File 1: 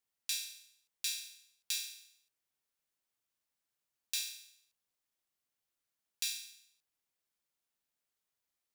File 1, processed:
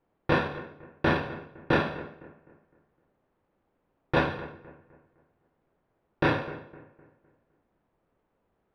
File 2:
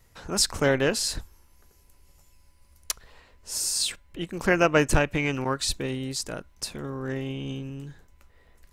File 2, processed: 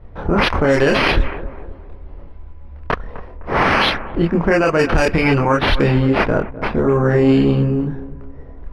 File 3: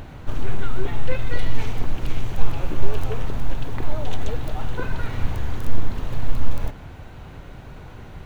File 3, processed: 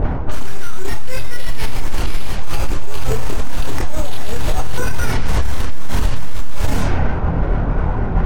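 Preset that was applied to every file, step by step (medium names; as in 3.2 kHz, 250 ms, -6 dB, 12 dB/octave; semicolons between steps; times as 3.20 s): reverse; compression 12:1, threshold -24 dBFS; reverse; chorus voices 6, 0.59 Hz, delay 27 ms, depth 2.9 ms; careless resampling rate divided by 6×, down none, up hold; bucket-brigade echo 255 ms, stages 4096, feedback 39%, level -16.5 dB; level-controlled noise filter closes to 490 Hz, open at -22 dBFS; loudness maximiser +27 dB; tape noise reduction on one side only encoder only; trim -4.5 dB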